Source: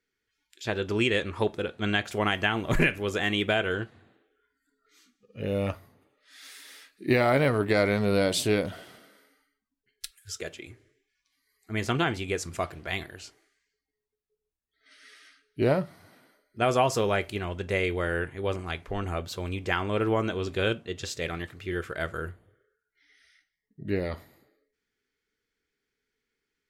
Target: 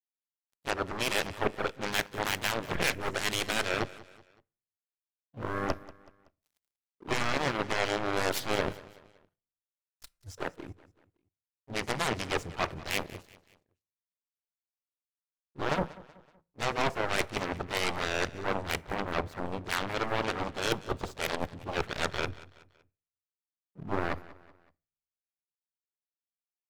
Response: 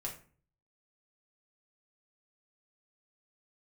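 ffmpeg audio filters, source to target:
-filter_complex "[0:a]afwtdn=0.0158,areverse,acompressor=threshold=-34dB:ratio=6,areverse,aeval=exprs='sgn(val(0))*max(abs(val(0))-0.00168,0)':c=same,aeval=exprs='0.0668*(cos(1*acos(clip(val(0)/0.0668,-1,1)))-cos(1*PI/2))+0.00266*(cos(4*acos(clip(val(0)/0.0668,-1,1)))-cos(4*PI/2))+0.00531*(cos(6*acos(clip(val(0)/0.0668,-1,1)))-cos(6*PI/2))+0.0211*(cos(7*acos(clip(val(0)/0.0668,-1,1)))-cos(7*PI/2))':c=same,asplit=2[a][b];[b]asetrate=55563,aresample=44100,atempo=0.793701,volume=-11dB[c];[a][c]amix=inputs=2:normalize=0,aecho=1:1:188|376|564:0.112|0.0482|0.0207,asplit=2[d][e];[1:a]atrim=start_sample=2205[f];[e][f]afir=irnorm=-1:irlink=0,volume=-17dB[g];[d][g]amix=inputs=2:normalize=0,volume=6dB"

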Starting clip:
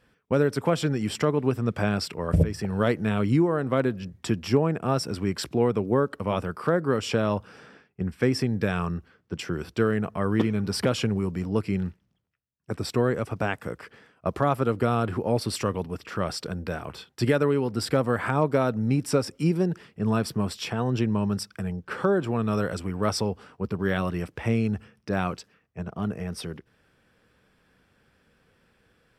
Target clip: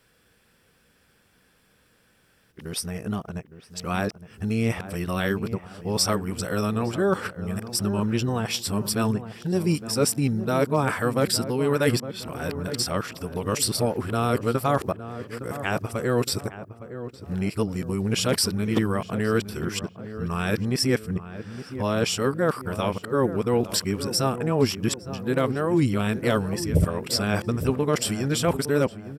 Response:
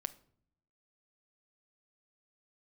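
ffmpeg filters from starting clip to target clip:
-filter_complex "[0:a]areverse,crystalizer=i=2.5:c=0,asplit=2[a][b];[b]adelay=862,lowpass=f=1.2k:p=1,volume=-11.5dB,asplit=2[c][d];[d]adelay=862,lowpass=f=1.2k:p=1,volume=0.49,asplit=2[e][f];[f]adelay=862,lowpass=f=1.2k:p=1,volume=0.49,asplit=2[g][h];[h]adelay=862,lowpass=f=1.2k:p=1,volume=0.49,asplit=2[i][j];[j]adelay=862,lowpass=f=1.2k:p=1,volume=0.49[k];[a][c][e][g][i][k]amix=inputs=6:normalize=0"

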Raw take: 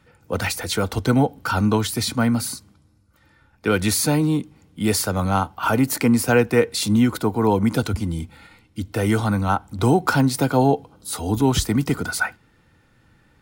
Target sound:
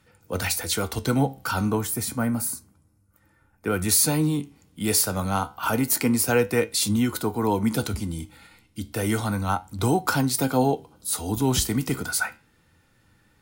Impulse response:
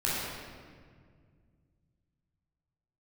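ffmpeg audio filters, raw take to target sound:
-filter_complex "[0:a]asettb=1/sr,asplit=3[a][b][c];[a]atrim=end=1.704[d];[b]atrim=start=1.7:end=3.89,asetpts=PTS-STARTPTS,afade=t=in:d=0.004:c=qsin,afade=t=out:st=2.186:d=0.004:c=qsin,equalizer=f=4k:w=0.99:g=-12.5[e];[c]atrim=start=3.886[f];[d][e]acrossfade=d=0.004:c1=hsin:c2=qsin[g];[g][f]acrossfade=d=0.004:c1=qsin:c2=hsin,flanger=delay=9.3:depth=7:regen=74:speed=0.3:shape=triangular,aemphasis=mode=production:type=cd"

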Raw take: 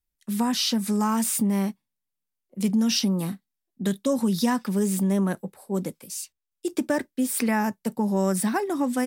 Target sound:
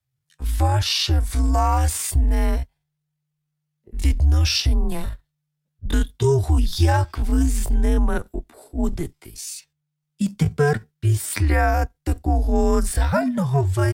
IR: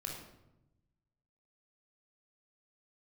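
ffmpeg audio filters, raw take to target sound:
-af "afreqshift=-150,atempo=0.65,highshelf=f=7.3k:g=-9,volume=5.5dB"

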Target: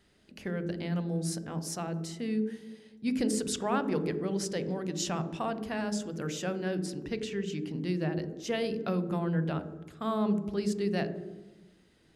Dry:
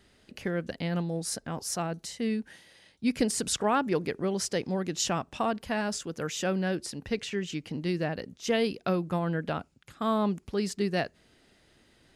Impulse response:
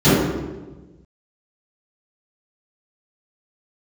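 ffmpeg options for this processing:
-filter_complex "[0:a]asplit=2[a][b];[1:a]atrim=start_sample=2205,asetrate=48510,aresample=44100,adelay=11[c];[b][c]afir=irnorm=-1:irlink=0,volume=-36dB[d];[a][d]amix=inputs=2:normalize=0,volume=-5dB"

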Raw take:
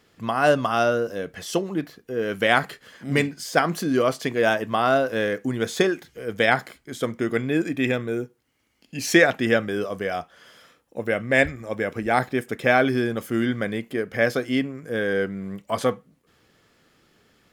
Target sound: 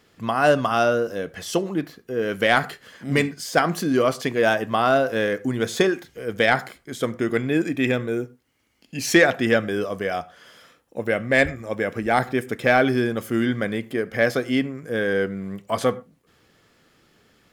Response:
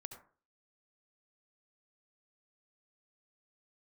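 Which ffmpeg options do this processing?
-filter_complex "[0:a]asplit=2[a][b];[1:a]atrim=start_sample=2205,afade=t=out:st=0.18:d=0.01,atrim=end_sample=8379[c];[b][c]afir=irnorm=-1:irlink=0,volume=-9dB[d];[a][d]amix=inputs=2:normalize=0,asoftclip=type=tanh:threshold=-3dB"

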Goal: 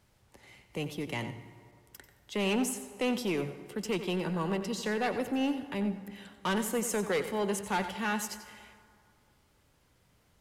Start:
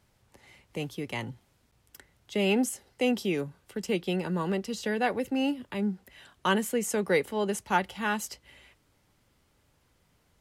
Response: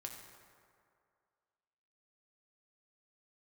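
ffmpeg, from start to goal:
-filter_complex "[0:a]asoftclip=type=tanh:threshold=-25dB,asplit=2[a][b];[1:a]atrim=start_sample=2205,adelay=91[c];[b][c]afir=irnorm=-1:irlink=0,volume=-6dB[d];[a][d]amix=inputs=2:normalize=0"

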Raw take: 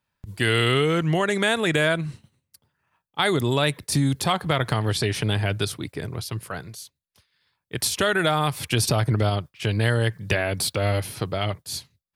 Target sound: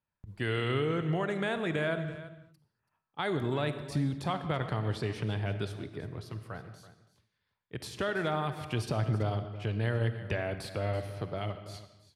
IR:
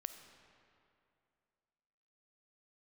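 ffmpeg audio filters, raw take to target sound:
-filter_complex "[0:a]lowpass=f=1.6k:p=1,aecho=1:1:331:0.168[a];[1:a]atrim=start_sample=2205,afade=t=out:st=0.29:d=0.01,atrim=end_sample=13230[b];[a][b]afir=irnorm=-1:irlink=0,volume=-5dB"

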